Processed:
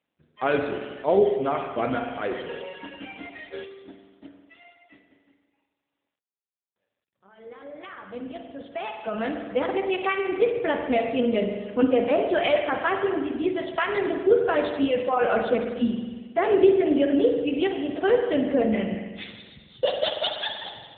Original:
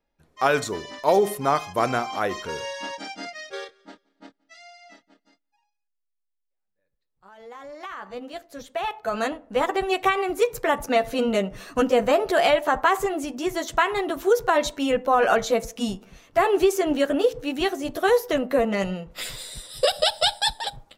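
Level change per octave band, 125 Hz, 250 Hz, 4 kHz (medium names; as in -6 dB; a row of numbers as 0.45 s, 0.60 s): -1.0 dB, +2.5 dB, -5.5 dB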